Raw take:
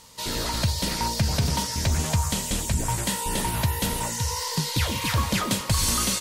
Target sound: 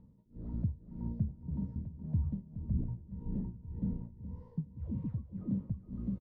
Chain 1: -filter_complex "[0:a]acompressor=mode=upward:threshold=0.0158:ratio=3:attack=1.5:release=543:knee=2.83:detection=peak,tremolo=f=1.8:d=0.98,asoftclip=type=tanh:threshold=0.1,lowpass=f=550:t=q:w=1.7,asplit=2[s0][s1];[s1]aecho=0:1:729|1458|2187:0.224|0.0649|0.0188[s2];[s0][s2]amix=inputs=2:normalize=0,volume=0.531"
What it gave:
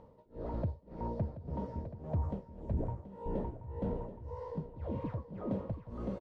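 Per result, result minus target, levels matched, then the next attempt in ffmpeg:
500 Hz band +17.0 dB; echo 309 ms late
-filter_complex "[0:a]acompressor=mode=upward:threshold=0.0158:ratio=3:attack=1.5:release=543:knee=2.83:detection=peak,tremolo=f=1.8:d=0.98,asoftclip=type=tanh:threshold=0.1,lowpass=f=210:t=q:w=1.7,asplit=2[s0][s1];[s1]aecho=0:1:729|1458|2187:0.224|0.0649|0.0188[s2];[s0][s2]amix=inputs=2:normalize=0,volume=0.531"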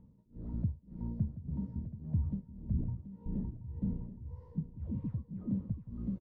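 echo 309 ms late
-filter_complex "[0:a]acompressor=mode=upward:threshold=0.0158:ratio=3:attack=1.5:release=543:knee=2.83:detection=peak,tremolo=f=1.8:d=0.98,asoftclip=type=tanh:threshold=0.1,lowpass=f=210:t=q:w=1.7,asplit=2[s0][s1];[s1]aecho=0:1:420|840|1260:0.224|0.0649|0.0188[s2];[s0][s2]amix=inputs=2:normalize=0,volume=0.531"

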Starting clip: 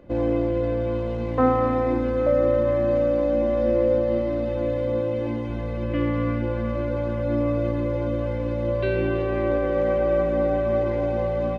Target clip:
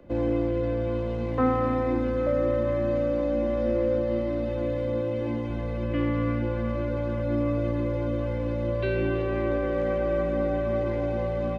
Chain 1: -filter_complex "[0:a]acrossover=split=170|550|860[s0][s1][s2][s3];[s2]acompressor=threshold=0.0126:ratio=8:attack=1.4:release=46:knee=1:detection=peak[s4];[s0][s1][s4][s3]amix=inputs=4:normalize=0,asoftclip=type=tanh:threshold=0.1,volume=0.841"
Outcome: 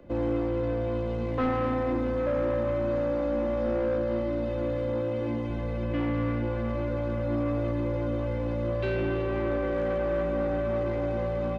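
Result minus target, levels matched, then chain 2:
saturation: distortion +16 dB
-filter_complex "[0:a]acrossover=split=170|550|860[s0][s1][s2][s3];[s2]acompressor=threshold=0.0126:ratio=8:attack=1.4:release=46:knee=1:detection=peak[s4];[s0][s1][s4][s3]amix=inputs=4:normalize=0,asoftclip=type=tanh:threshold=0.335,volume=0.841"

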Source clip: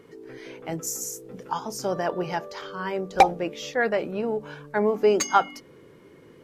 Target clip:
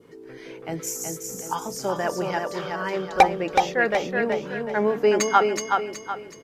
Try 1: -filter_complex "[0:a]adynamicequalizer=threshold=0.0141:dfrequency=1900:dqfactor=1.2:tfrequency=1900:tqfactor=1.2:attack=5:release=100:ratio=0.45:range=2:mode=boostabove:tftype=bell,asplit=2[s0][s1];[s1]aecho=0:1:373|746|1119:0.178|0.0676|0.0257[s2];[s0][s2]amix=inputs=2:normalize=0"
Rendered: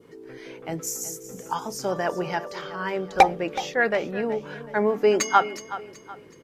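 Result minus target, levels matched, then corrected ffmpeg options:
echo-to-direct -10.5 dB
-filter_complex "[0:a]adynamicequalizer=threshold=0.0141:dfrequency=1900:dqfactor=1.2:tfrequency=1900:tqfactor=1.2:attack=5:release=100:ratio=0.45:range=2:mode=boostabove:tftype=bell,asplit=2[s0][s1];[s1]aecho=0:1:373|746|1119|1492|1865:0.596|0.226|0.086|0.0327|0.0124[s2];[s0][s2]amix=inputs=2:normalize=0"

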